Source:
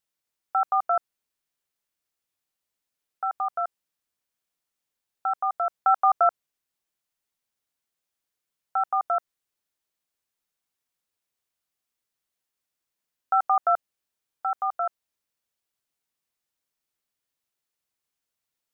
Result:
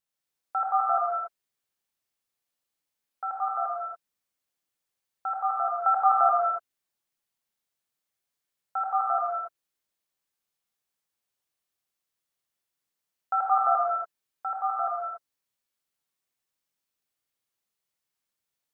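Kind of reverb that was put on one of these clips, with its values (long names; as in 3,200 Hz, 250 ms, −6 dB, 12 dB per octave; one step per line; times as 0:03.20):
reverb whose tail is shaped and stops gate 310 ms flat, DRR −3.5 dB
level −5.5 dB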